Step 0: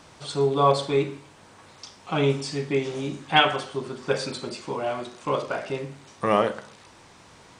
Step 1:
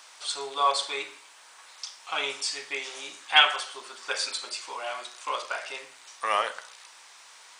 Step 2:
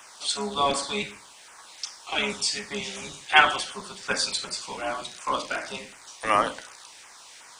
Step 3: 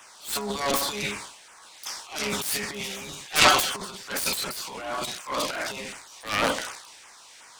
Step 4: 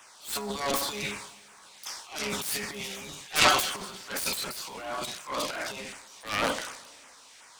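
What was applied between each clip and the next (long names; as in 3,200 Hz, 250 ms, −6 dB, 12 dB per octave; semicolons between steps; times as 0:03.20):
high-pass filter 900 Hz 12 dB per octave; spectral tilt +2 dB per octave
sub-octave generator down 1 octave, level +4 dB; auto-filter notch saw down 2.7 Hz 890–4,600 Hz; level +4.5 dB
phase distortion by the signal itself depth 0.61 ms; transient designer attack −9 dB, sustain +12 dB; level −1 dB
dense smooth reverb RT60 2.1 s, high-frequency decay 0.95×, DRR 18.5 dB; level −3.5 dB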